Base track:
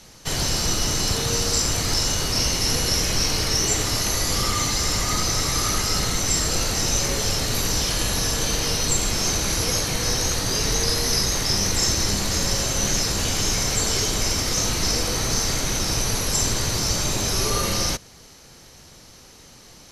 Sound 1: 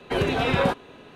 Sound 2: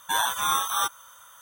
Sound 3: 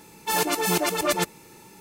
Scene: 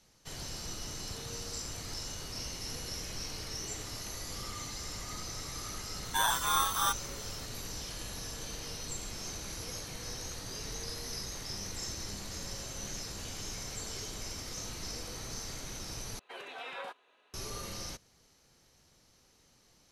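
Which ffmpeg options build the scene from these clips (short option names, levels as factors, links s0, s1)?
-filter_complex "[0:a]volume=0.119[s0];[1:a]highpass=730[s1];[s0]asplit=2[s2][s3];[s2]atrim=end=16.194[s4];[s1]atrim=end=1.15,asetpts=PTS-STARTPTS,volume=0.158[s5];[s3]atrim=start=17.336[s6];[2:a]atrim=end=1.41,asetpts=PTS-STARTPTS,volume=0.596,afade=t=in:d=0.004:c=hsin,afade=t=out:st=1.406:d=0.004:c=hsin,adelay=6050[s7];[s4][s5]acrossfade=d=0.004:c1=hsin:c2=hsin[s8];[s8][s6]acrossfade=d=0.004:c1=hsin:c2=hsin[s9];[s9][s7]amix=inputs=2:normalize=0"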